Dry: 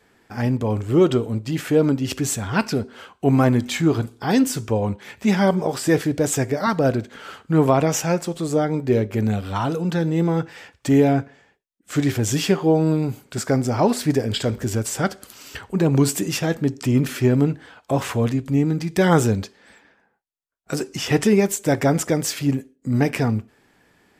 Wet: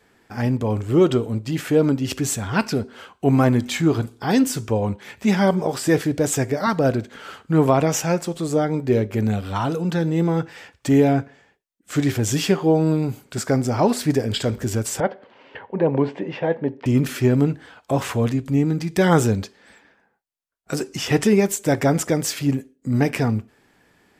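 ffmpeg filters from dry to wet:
ffmpeg -i in.wav -filter_complex "[0:a]asettb=1/sr,asplit=3[link_01][link_02][link_03];[link_01]atrim=end=15.004[link_04];[link_02]atrim=start=15:end=16.86,asetpts=PTS-STARTPTS,afade=type=in:duration=0.004:curve=qsin,afade=type=out:start_time=1.856:duration=0.004:curve=qsin,highpass=190,equalizer=frequency=190:width_type=q:width=4:gain=-3,equalizer=frequency=310:width_type=q:width=4:gain=-4,equalizer=frequency=530:width_type=q:width=4:gain=8,equalizer=frequency=910:width_type=q:width=4:gain=6,equalizer=frequency=1300:width_type=q:width=4:gain=-9,equalizer=frequency=2500:width_type=q:width=4:gain=-4,lowpass=frequency=2600:width=0.5412,lowpass=frequency=2600:width=1.3066[link_05];[link_03]atrim=start=16.856[link_06];[link_04][link_05]acrossfade=duration=0.004:curve1=hsin:curve2=qsin[link_07];[link_07][link_06]acrossfade=duration=0.004:curve1=qsin:curve2=hsin" out.wav

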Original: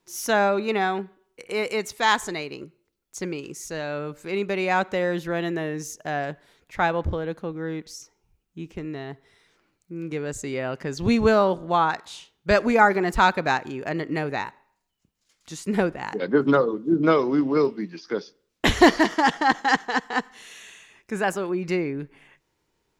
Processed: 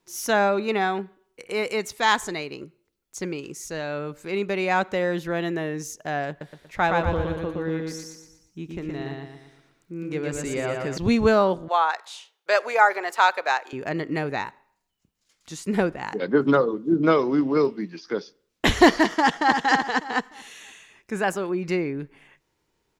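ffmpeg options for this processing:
ffmpeg -i in.wav -filter_complex "[0:a]asettb=1/sr,asplit=3[link_01][link_02][link_03];[link_01]atrim=end=6.294[link_04];[link_02]atrim=start=6.29:end=10.98,asetpts=PTS-STARTPTS,afade=type=in:duration=0.004:curve=qsin,afade=type=out:start_time=4.686:duration=0.004:curve=qsin,aecho=1:1:118|236|354|472|590|708:0.708|0.311|0.137|0.0603|0.0265|0.0117,atrim=end_sample=206829[link_05];[link_03]atrim=start=10.976[link_06];[link_04][link_05]acrossfade=duration=0.004:curve1=hsin:curve2=qsin[link_07];[link_07][link_06]acrossfade=duration=0.004:curve1=qsin:curve2=hsin,asettb=1/sr,asplit=3[link_08][link_09][link_10];[link_08]atrim=end=11.684[link_11];[link_09]atrim=start=11.68:end=13.73,asetpts=PTS-STARTPTS,afade=type=in:duration=0.004:curve=qsin,afade=type=out:start_time=2.046:duration=0.004:curve=qsin,highpass=frequency=510:width=0.5412,highpass=frequency=510:width=1.3066[link_12];[link_10]atrim=start=13.726[link_13];[link_11][link_12]acrossfade=duration=0.004:curve1=hsin:curve2=qsin[link_14];[link_14][link_13]acrossfade=duration=0.004:curve1=qsin:curve2=hsin,asplit=2[link_15][link_16];[link_16]afade=type=in:start_time=19.15:duration=0.01,afade=type=out:start_time=19.58:duration=0.01,aecho=0:1:300|600|900|1200:0.473151|0.141945|0.0425836|0.0127751[link_17];[link_15][link_17]amix=inputs=2:normalize=0" out.wav

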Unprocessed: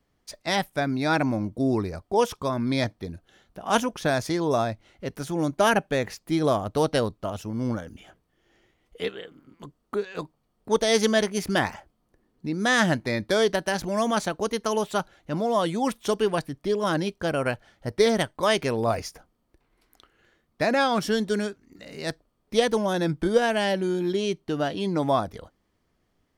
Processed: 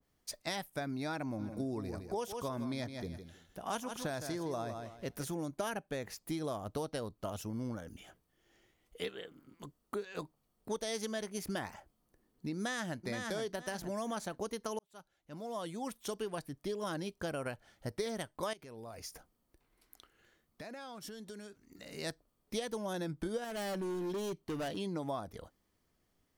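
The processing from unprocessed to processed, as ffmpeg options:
ffmpeg -i in.wav -filter_complex "[0:a]asplit=3[link_01][link_02][link_03];[link_01]afade=type=out:start_time=1.38:duration=0.02[link_04];[link_02]aecho=1:1:160|320|480:0.299|0.0657|0.0144,afade=type=in:start_time=1.38:duration=0.02,afade=type=out:start_time=5.34:duration=0.02[link_05];[link_03]afade=type=in:start_time=5.34:duration=0.02[link_06];[link_04][link_05][link_06]amix=inputs=3:normalize=0,asplit=2[link_07][link_08];[link_08]afade=type=in:start_time=12.56:duration=0.01,afade=type=out:start_time=13.02:duration=0.01,aecho=0:1:470|940|1410:0.446684|0.111671|0.0279177[link_09];[link_07][link_09]amix=inputs=2:normalize=0,asettb=1/sr,asplit=3[link_10][link_11][link_12];[link_10]atrim=end=18.534[link_13];[link_11]atrim=start=18.53:end=21.93,asetpts=PTS-STARTPTS,afade=type=in:duration=0.004:curve=qsin,afade=type=out:start_time=3.396:duration=0.004:curve=qsin,acompressor=threshold=-39dB:ratio=6:attack=3.2:release=140:knee=1:detection=peak[link_14];[link_12]atrim=start=21.926[link_15];[link_13][link_14]acrossfade=duration=0.004:curve1=hsin:curve2=qsin[link_16];[link_16][link_15]acrossfade=duration=0.004:curve1=qsin:curve2=hsin,asettb=1/sr,asplit=3[link_17][link_18][link_19];[link_17]atrim=end=23.444[link_20];[link_18]atrim=start=23.44:end=24.77,asetpts=PTS-STARTPTS,afade=type=in:duration=0.004:curve=qsin,afade=type=out:start_time=1.326:duration=0.004:curve=qsin,volume=26dB,asoftclip=hard,volume=-26dB[link_21];[link_19]atrim=start=24.766[link_22];[link_20][link_21]acrossfade=duration=0.004:curve1=hsin:curve2=qsin[link_23];[link_23][link_22]acrossfade=duration=0.004:curve1=qsin:curve2=hsin,asplit=2[link_24][link_25];[link_24]atrim=end=14.79,asetpts=PTS-STARTPTS,afade=type=out:start_time=14.786:duration=0.004:curve=hsin[link_26];[link_25]atrim=start=14.79,asetpts=PTS-STARTPTS,afade=type=in:duration=2.36[link_27];[link_26][link_27]concat=n=2:v=0:a=1,highshelf=frequency=6400:gain=11.5,acompressor=threshold=-28dB:ratio=6,adynamicequalizer=threshold=0.00501:dfrequency=1700:dqfactor=0.7:tfrequency=1700:tqfactor=0.7:attack=5:release=100:ratio=0.375:range=2:mode=cutabove:tftype=highshelf,volume=-6.5dB" out.wav

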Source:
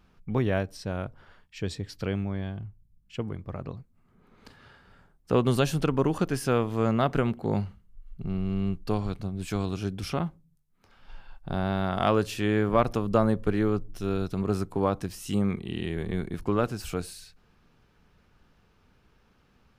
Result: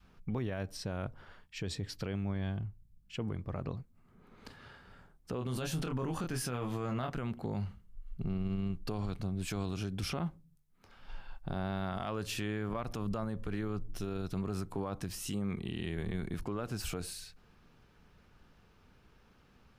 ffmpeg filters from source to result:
ffmpeg -i in.wav -filter_complex "[0:a]asettb=1/sr,asplit=3[link_01][link_02][link_03];[link_01]atrim=end=5.354[link_04];[link_02]atrim=start=5.35:end=7.1,asetpts=PTS-STARTPTS,afade=type=in:duration=0.004:curve=qsin,afade=type=out:start_time=1.746:duration=0.004:curve=qsin,asplit=2[link_05][link_06];[link_06]adelay=24,volume=-5.5dB[link_07];[link_05][link_07]amix=inputs=2:normalize=0,atrim=end_sample=77175[link_08];[link_03]atrim=start=7.096[link_09];[link_04][link_08]acrossfade=duration=0.004:curve1=hsin:curve2=qsin[link_10];[link_10][link_09]acrossfade=duration=0.004:curve1=qsin:curve2=hsin,adynamicequalizer=threshold=0.0141:dfrequency=420:dqfactor=0.84:tfrequency=420:tqfactor=0.84:attack=5:release=100:ratio=0.375:range=2.5:mode=cutabove:tftype=bell,acompressor=threshold=-28dB:ratio=3,alimiter=level_in=3.5dB:limit=-24dB:level=0:latency=1:release=38,volume=-3.5dB" out.wav

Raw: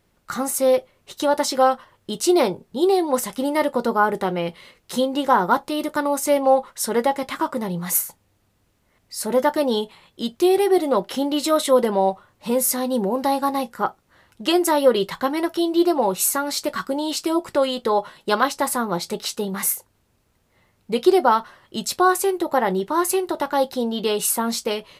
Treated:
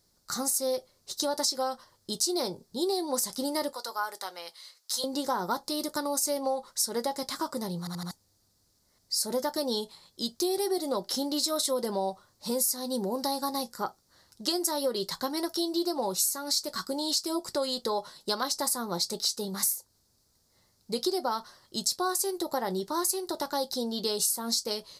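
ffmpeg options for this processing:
ffmpeg -i in.wav -filter_complex "[0:a]asettb=1/sr,asplit=3[link_01][link_02][link_03];[link_01]atrim=end=3.734[link_04];[link_02]atrim=start=3.73:end=5.04,asetpts=PTS-STARTPTS,afade=type=in:duration=0.004:curve=qsin,afade=type=out:start_time=1.306:duration=0.004:curve=qsin,highpass=1000[link_05];[link_03]atrim=start=5.036[link_06];[link_04][link_05]acrossfade=duration=0.004:curve1=hsin:curve2=qsin[link_07];[link_07][link_06]acrossfade=duration=0.004:curve1=qsin:curve2=hsin,asplit=5[link_08][link_09][link_10][link_11][link_12];[link_08]atrim=end=7.872[link_13];[link_09]atrim=start=7.788:end=7.872[link_14];[link_10]atrim=start=7.788:end=7.872[link_15];[link_11]atrim=start=7.788:end=7.872[link_16];[link_12]atrim=start=8.108[link_17];[link_13][link_14]acrossfade=duration=0.004:curve1=hsin:curve2=hsin[link_18];[link_18][link_15]acrossfade=duration=0.004:curve1=hsin:curve2=hsin[link_19];[link_19][link_16]acrossfade=duration=0.004:curve1=hsin:curve2=hsin[link_20];[link_20][link_17]acrossfade=duration=0.004:curve1=hsin:curve2=hsin,highshelf=frequency=3600:width_type=q:width=3:gain=9.5,acompressor=threshold=-17dB:ratio=6,volume=-8dB" out.wav

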